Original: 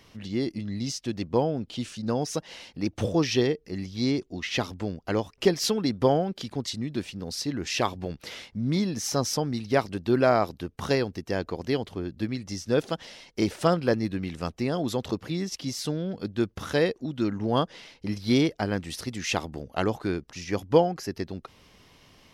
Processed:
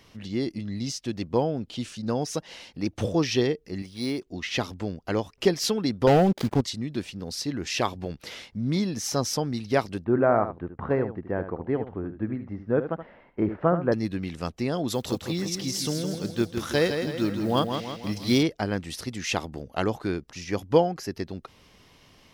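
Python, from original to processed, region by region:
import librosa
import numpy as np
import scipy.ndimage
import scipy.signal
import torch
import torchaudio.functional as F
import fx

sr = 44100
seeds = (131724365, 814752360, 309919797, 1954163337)

y = fx.chain(x, sr, fx.low_shelf(hz=220.0, db=-9.5),
    fx.resample_linear(factor=3), at=(3.82, 4.27))
y = fx.chain(y, sr, fx.median_filter(points=15),
    fx.leveller(passes=3),
    fx.dynamic_eq(hz=1400.0, q=1.1, threshold_db=-34.0, ratio=4.0, max_db=-4), at=(6.07, 6.61))
y = fx.chain(y, sr, fx.lowpass(hz=1700.0, slope=24),
    fx.echo_single(ms=75, db=-10.5), at=(10.04, 13.92))
y = fx.chain(y, sr, fx.block_float(bits=7),
    fx.high_shelf(hz=3900.0, db=6.0),
    fx.echo_feedback(ms=162, feedback_pct=51, wet_db=-6.5), at=(14.9, 18.43))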